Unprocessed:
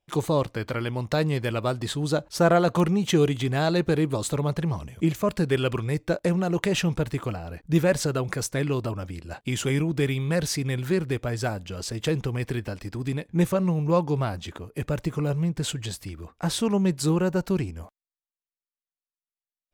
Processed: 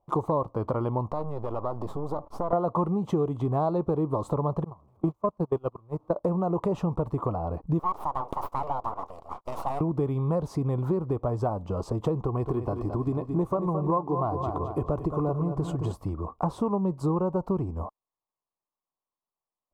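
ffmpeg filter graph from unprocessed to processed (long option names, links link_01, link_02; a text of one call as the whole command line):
ffmpeg -i in.wav -filter_complex "[0:a]asettb=1/sr,asplit=3[link_01][link_02][link_03];[link_01]atrim=end=1.104[link_04];[link_02]atrim=start=1.1:end=2.53,asetpts=PTS-STARTPTS,afade=type=in:duration=0.004:curve=qsin,afade=type=out:start_time=1.426:duration=0.004:curve=qsin,acompressor=threshold=-32dB:ratio=3:attack=3.2:release=140:knee=1:detection=peak,aeval=exprs='max(val(0),0)':channel_layout=same[link_05];[link_03]atrim=start=2.526[link_06];[link_04][link_05]acrossfade=duration=0.004:curve1=hsin:curve2=qsin[link_07];[link_07][link_06]acrossfade=duration=0.004:curve1=qsin:curve2=hsin,asettb=1/sr,asplit=3[link_08][link_09][link_10];[link_08]atrim=end=4.644[link_11];[link_09]atrim=start=4.64:end=6.16,asetpts=PTS-STARTPTS,afade=type=in:duration=0.004:curve=qsin,afade=type=out:start_time=1.516:duration=0.004:curve=qsin,aeval=exprs='val(0)+0.5*0.0299*sgn(val(0))':channel_layout=same,agate=range=-34dB:threshold=-21dB:ratio=16:release=100:detection=peak[link_12];[link_10]atrim=start=6.156[link_13];[link_11][link_12]acrossfade=duration=0.004:curve1=hsin:curve2=qsin[link_14];[link_14][link_13]acrossfade=duration=0.004:curve1=qsin:curve2=hsin,asettb=1/sr,asplit=3[link_15][link_16][link_17];[link_15]atrim=end=7.794[link_18];[link_16]atrim=start=7.79:end=9.81,asetpts=PTS-STARTPTS,afade=type=in:duration=0.004:curve=qsin,afade=type=out:start_time=2.016:duration=0.004:curve=qsin,highpass=290,aeval=exprs='abs(val(0))':channel_layout=same,lowshelf=frequency=460:gain=-9[link_19];[link_17]atrim=start=9.806[link_20];[link_18][link_19]acrossfade=duration=0.004:curve1=hsin:curve2=qsin[link_21];[link_21][link_20]acrossfade=duration=0.004:curve1=qsin:curve2=hsin,asettb=1/sr,asplit=3[link_22][link_23][link_24];[link_22]atrim=end=12.234[link_25];[link_23]atrim=start=12.23:end=15.93,asetpts=PTS-STARTPTS,afade=type=in:duration=0.004:curve=qsin,afade=type=out:start_time=3.696:duration=0.004:curve=qsin,aecho=1:1:2.8:0.33,atrim=end_sample=163170,aecho=1:1:219|438|657|876:0.316|0.123|0.0481|0.0188,atrim=end_sample=163170[link_26];[link_24]atrim=start=15.926[link_27];[link_25][link_26]acrossfade=duration=0.004:curve1=hsin:curve2=qsin[link_28];[link_28][link_27]acrossfade=duration=0.004:curve1=qsin:curve2=hsin,firequalizer=gain_entry='entry(230,0);entry(1100,9);entry(1600,-22)':delay=0.05:min_phase=1,acompressor=threshold=-31dB:ratio=4,volume=6dB" out.wav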